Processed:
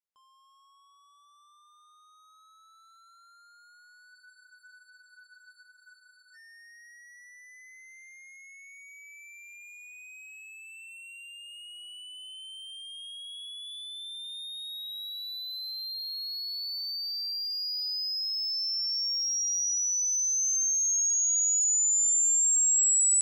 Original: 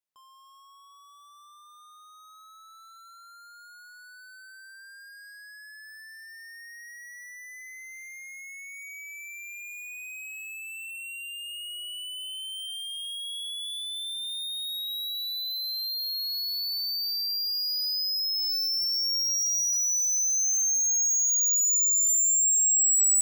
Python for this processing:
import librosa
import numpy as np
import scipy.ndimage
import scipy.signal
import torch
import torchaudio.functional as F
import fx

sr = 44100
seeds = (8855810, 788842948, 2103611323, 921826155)

y = scipy.signal.sosfilt(scipy.signal.butter(2, 9600.0, 'lowpass', fs=sr, output='sos'), x)
y = fx.echo_feedback(y, sr, ms=435, feedback_pct=56, wet_db=-22.0)
y = fx.spec_freeze(y, sr, seeds[0], at_s=4.15, hold_s=2.19)
y = fx.upward_expand(y, sr, threshold_db=-38.0, expansion=1.5)